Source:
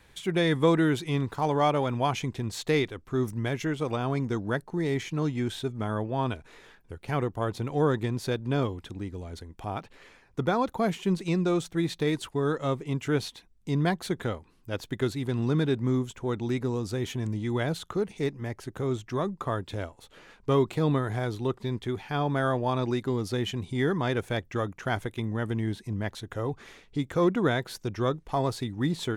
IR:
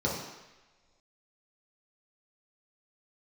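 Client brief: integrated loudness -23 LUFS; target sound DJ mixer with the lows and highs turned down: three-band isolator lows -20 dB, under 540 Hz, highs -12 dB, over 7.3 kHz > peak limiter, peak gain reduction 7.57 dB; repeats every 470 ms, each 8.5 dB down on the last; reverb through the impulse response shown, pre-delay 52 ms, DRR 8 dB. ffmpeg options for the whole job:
-filter_complex "[0:a]aecho=1:1:470|940|1410|1880:0.376|0.143|0.0543|0.0206,asplit=2[s0][s1];[1:a]atrim=start_sample=2205,adelay=52[s2];[s1][s2]afir=irnorm=-1:irlink=0,volume=0.133[s3];[s0][s3]amix=inputs=2:normalize=0,acrossover=split=540 7300:gain=0.1 1 0.251[s4][s5][s6];[s4][s5][s6]amix=inputs=3:normalize=0,volume=4.22,alimiter=limit=0.335:level=0:latency=1"

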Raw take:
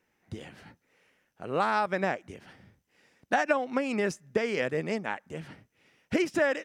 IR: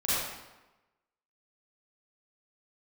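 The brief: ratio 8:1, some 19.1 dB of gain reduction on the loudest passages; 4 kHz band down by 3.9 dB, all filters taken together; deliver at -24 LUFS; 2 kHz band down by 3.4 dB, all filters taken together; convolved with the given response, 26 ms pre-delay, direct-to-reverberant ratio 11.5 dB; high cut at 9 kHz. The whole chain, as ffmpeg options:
-filter_complex "[0:a]lowpass=9000,equalizer=f=2000:t=o:g=-3.5,equalizer=f=4000:t=o:g=-4,acompressor=threshold=0.00794:ratio=8,asplit=2[s0][s1];[1:a]atrim=start_sample=2205,adelay=26[s2];[s1][s2]afir=irnorm=-1:irlink=0,volume=0.0794[s3];[s0][s3]amix=inputs=2:normalize=0,volume=14.1"

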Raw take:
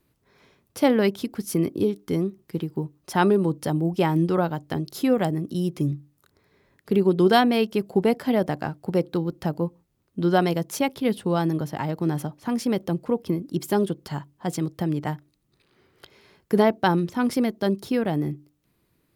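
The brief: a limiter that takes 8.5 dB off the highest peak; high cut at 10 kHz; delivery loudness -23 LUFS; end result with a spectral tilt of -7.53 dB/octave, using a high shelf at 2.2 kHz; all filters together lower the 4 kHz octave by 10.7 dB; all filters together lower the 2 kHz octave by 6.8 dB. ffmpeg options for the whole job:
-af "lowpass=10000,equalizer=f=2000:t=o:g=-4.5,highshelf=f=2200:g=-7,equalizer=f=4000:t=o:g=-6,volume=1.58,alimiter=limit=0.266:level=0:latency=1"

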